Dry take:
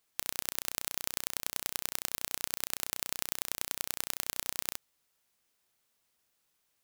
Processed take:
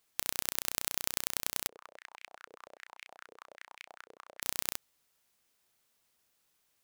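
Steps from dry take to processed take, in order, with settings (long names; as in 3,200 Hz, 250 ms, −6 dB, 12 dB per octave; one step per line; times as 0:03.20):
0:01.67–0:04.42: band-pass on a step sequencer 10 Hz 460–2,300 Hz
level +1.5 dB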